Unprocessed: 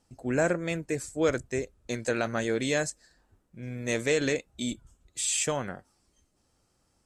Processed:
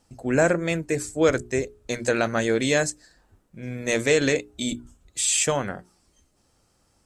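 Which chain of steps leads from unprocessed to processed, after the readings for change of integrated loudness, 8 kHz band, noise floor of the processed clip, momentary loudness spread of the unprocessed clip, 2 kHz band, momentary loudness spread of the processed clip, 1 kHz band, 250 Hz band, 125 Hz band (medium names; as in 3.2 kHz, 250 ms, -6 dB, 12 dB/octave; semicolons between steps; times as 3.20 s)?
+6.0 dB, +6.0 dB, -66 dBFS, 12 LU, +6.0 dB, 13 LU, +6.0 dB, +5.0 dB, +5.0 dB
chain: hum notches 60/120/180/240/300/360/420 Hz; trim +6 dB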